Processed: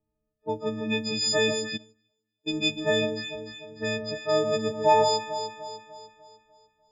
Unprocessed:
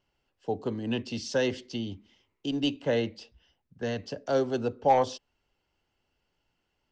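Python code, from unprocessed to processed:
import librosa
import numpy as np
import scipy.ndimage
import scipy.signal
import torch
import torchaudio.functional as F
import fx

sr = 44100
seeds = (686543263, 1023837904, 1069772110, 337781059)

y = fx.freq_snap(x, sr, grid_st=6)
y = fx.env_lowpass(y, sr, base_hz=410.0, full_db=-25.0)
y = fx.echo_alternate(y, sr, ms=149, hz=1200.0, feedback_pct=67, wet_db=-6)
y = fx.upward_expand(y, sr, threshold_db=-42.0, expansion=2.5, at=(1.76, 2.46), fade=0.02)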